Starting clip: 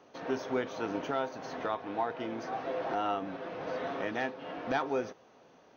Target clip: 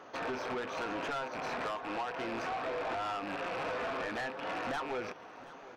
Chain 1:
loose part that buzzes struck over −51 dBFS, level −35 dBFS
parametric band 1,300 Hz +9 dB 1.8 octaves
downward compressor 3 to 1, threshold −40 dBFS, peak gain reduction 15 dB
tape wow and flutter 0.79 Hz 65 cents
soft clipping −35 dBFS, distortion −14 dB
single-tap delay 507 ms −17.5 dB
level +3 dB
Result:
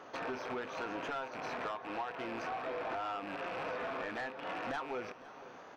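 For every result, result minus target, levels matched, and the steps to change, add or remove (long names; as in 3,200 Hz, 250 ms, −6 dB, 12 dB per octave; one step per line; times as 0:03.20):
echo 221 ms early; downward compressor: peak gain reduction +5 dB
change: single-tap delay 728 ms −17.5 dB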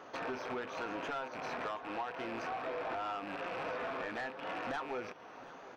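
downward compressor: peak gain reduction +5 dB
change: downward compressor 3 to 1, threshold −32.5 dBFS, peak gain reduction 10 dB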